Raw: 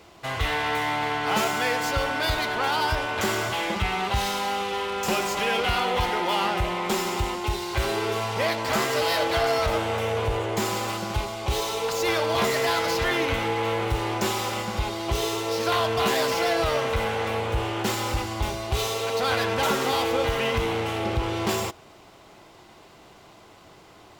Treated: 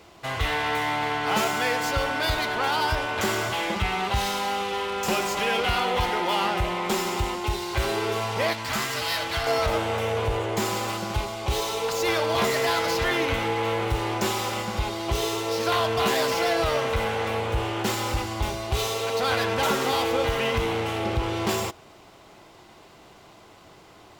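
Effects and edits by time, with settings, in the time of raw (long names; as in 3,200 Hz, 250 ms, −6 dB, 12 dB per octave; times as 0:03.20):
0:08.53–0:09.47: parametric band 480 Hz −11 dB 1.6 octaves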